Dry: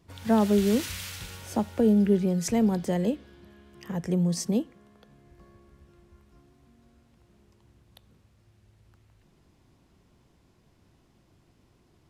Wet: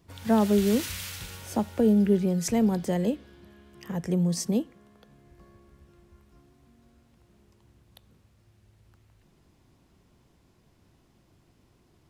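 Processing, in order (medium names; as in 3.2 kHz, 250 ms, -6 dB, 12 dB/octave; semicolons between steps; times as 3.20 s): treble shelf 12 kHz +5 dB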